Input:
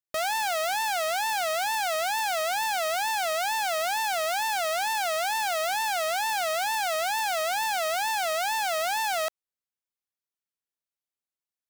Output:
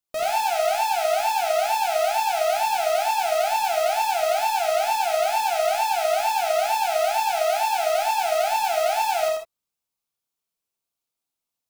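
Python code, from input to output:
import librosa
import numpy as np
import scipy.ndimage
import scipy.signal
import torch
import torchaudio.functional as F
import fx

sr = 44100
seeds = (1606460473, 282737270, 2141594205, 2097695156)

y = fx.peak_eq(x, sr, hz=1800.0, db=-8.0, octaves=0.48)
y = np.clip(10.0 ** (30.0 / 20.0) * y, -1.0, 1.0) / 10.0 ** (30.0 / 20.0)
y = fx.highpass(y, sr, hz=220.0, slope=24, at=(7.29, 7.94))
y = y + 10.0 ** (-4.0 / 20.0) * np.pad(y, (int(84 * sr / 1000.0), 0))[:len(y)]
y = fx.rev_gated(y, sr, seeds[0], gate_ms=90, shape='flat', drr_db=0.5)
y = y * 10.0 ** (4.0 / 20.0)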